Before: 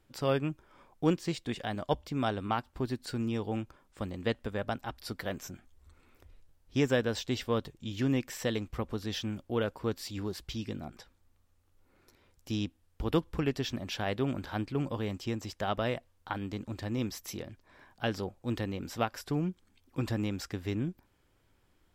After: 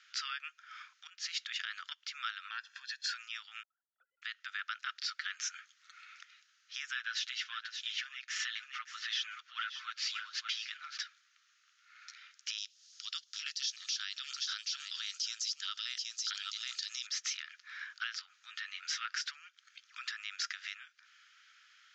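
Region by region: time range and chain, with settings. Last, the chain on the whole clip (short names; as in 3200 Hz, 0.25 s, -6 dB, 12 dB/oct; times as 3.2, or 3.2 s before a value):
1.07–1.92 LPF 11000 Hz + compressor 5:1, threshold -40 dBFS
2.48–3.13 notch 2400 Hz, Q 21 + comb 1.2 ms, depth 91% + compressor 2.5:1, threshold -39 dBFS
3.63–4.22 sine-wave speech + elliptic low-pass 680 Hz
6.95–10.98 comb 7.4 ms, depth 92% + echo 0.573 s -13.5 dB + decimation joined by straight lines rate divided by 3×
12.58–17.07 resonant high shelf 3300 Hz +14 dB, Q 1.5 + LFO notch saw up 5.8 Hz 440–1800 Hz + echo 0.774 s -13.5 dB
18.19–19.05 compressor, threshold -40 dBFS + doubler 12 ms -4.5 dB
whole clip: compressor 6:1, threshold -41 dBFS; Chebyshev band-pass 1300–6700 Hz, order 5; limiter -41.5 dBFS; gain +16 dB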